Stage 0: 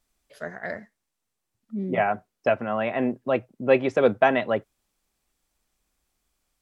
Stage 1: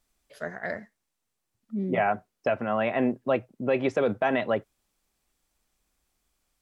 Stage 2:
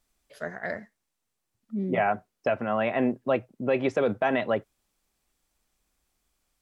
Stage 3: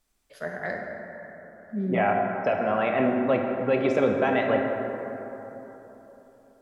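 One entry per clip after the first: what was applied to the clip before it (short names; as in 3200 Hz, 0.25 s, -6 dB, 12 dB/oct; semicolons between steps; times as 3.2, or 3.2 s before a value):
limiter -14.5 dBFS, peak gain reduction 9 dB
nothing audible
plate-style reverb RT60 3.7 s, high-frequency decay 0.35×, DRR 1 dB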